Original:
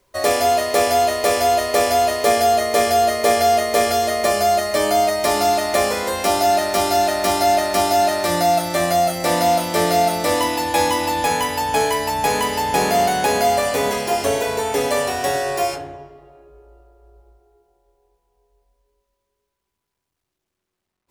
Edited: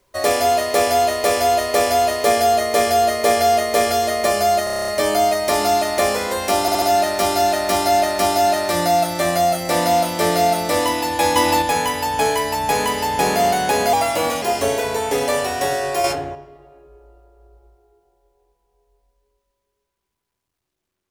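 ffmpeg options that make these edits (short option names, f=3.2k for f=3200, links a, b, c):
-filter_complex "[0:a]asplit=18[a][b][c][d][e][f][g][h][i][j][k][l][m][n][o][p][q][r];[a]atrim=end=4.672[s];[b]atrim=start=4.638:end=4.672[t];[c]atrim=start=4.638:end=4.672[u];[d]atrim=start=4.638:end=4.672[v];[e]atrim=start=4.638:end=4.672[w];[f]atrim=start=4.638:end=4.672[x];[g]atrim=start=4.638:end=4.672[y];[h]atrim=start=4.638:end=4.672[z];[i]atrim=start=4.638:end=6.442[aa];[j]atrim=start=6.368:end=6.442[ab];[k]atrim=start=6.368:end=6.442[ac];[l]atrim=start=6.368:end=10.912[ad];[m]atrim=start=10.908:end=11.172,asetpts=PTS-STARTPTS,volume=4.5dB[ae];[n]atrim=start=11.168:end=13.484[af];[o]atrim=start=13.48:end=14.05,asetpts=PTS-STARTPTS,asetrate=51156,aresample=44100[ag];[p]atrim=start=14.046:end=15.672[ah];[q]atrim=start=15.668:end=15.982,asetpts=PTS-STARTPTS,volume=6dB[ai];[r]atrim=start=15.978[aj];[s][t]acrossfade=d=0.004:c1=hsin:c2=hsin[ak];[ak][u]acrossfade=d=0.004:c1=hsin:c2=hsin[al];[al][v]acrossfade=d=0.004:c1=hsin:c2=hsin[am];[am][w]acrossfade=d=0.004:c1=hsin:c2=hsin[an];[an][x]acrossfade=d=0.004:c1=hsin:c2=hsin[ao];[ao][y]acrossfade=d=0.004:c1=hsin:c2=hsin[ap];[ap][z]acrossfade=d=0.004:c1=hsin:c2=hsin[aq];[aq][aa]acrossfade=d=0.004:c1=hsin:c2=hsin[ar];[ar][ab]acrossfade=d=0.004:c1=hsin:c2=hsin[as];[as][ac]acrossfade=d=0.004:c1=hsin:c2=hsin[at];[at][ad]acrossfade=d=0.004:c1=hsin:c2=hsin[au];[au][ae]acrossfade=d=0.004:c1=hsin:c2=hsin[av];[av][af]acrossfade=d=0.004:c1=hsin:c2=hsin[aw];[aw][ag]acrossfade=d=0.004:c1=hsin:c2=hsin[ax];[ax][ah]acrossfade=d=0.004:c1=hsin:c2=hsin[ay];[ay][ai]acrossfade=d=0.004:c1=hsin:c2=hsin[az];[az][aj]acrossfade=d=0.004:c1=hsin:c2=hsin"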